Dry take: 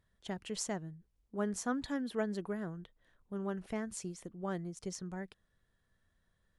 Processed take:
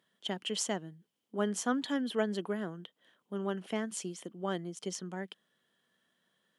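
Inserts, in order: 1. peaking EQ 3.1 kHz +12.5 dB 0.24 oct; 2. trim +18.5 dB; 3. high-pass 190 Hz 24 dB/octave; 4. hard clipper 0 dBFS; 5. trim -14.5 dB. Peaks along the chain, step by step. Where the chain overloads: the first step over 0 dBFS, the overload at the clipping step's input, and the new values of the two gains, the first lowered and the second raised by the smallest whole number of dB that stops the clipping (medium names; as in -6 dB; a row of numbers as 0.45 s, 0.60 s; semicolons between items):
-22.0 dBFS, -3.5 dBFS, -2.0 dBFS, -2.0 dBFS, -16.5 dBFS; nothing clips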